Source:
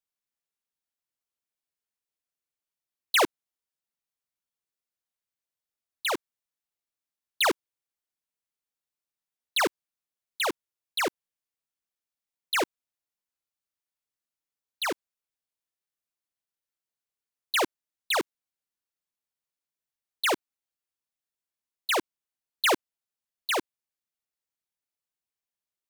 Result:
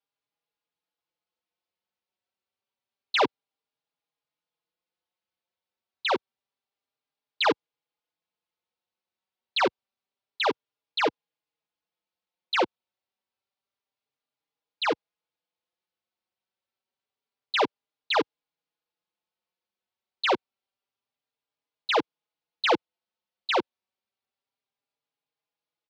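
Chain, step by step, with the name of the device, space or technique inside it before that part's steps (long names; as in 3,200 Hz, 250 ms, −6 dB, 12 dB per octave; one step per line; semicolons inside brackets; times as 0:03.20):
barber-pole flanger into a guitar amplifier (barber-pole flanger 4.5 ms +0.28 Hz; soft clipping −26 dBFS, distortion −13 dB; loudspeaker in its box 96–4,500 Hz, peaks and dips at 480 Hz +5 dB, 840 Hz +5 dB, 1,800 Hz −4 dB)
level +7.5 dB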